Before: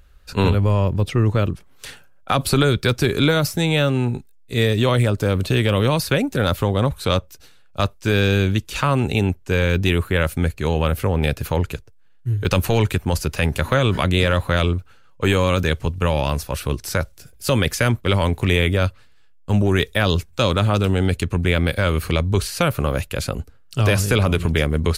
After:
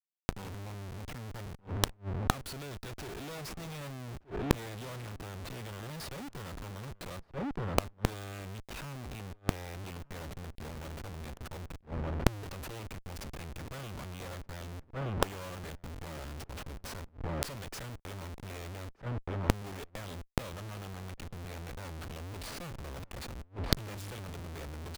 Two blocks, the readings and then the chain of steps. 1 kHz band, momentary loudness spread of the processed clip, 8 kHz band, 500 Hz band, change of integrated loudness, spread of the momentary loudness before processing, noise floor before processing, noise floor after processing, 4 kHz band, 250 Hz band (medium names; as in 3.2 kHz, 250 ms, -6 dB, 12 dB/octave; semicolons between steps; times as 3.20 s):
-16.0 dB, 10 LU, -13.5 dB, -21.0 dB, -19.5 dB, 8 LU, -48 dBFS, -62 dBFS, -18.5 dB, -19.0 dB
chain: Schmitt trigger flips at -28 dBFS; echo from a far wall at 210 m, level -22 dB; inverted gate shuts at -28 dBFS, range -30 dB; trim +8 dB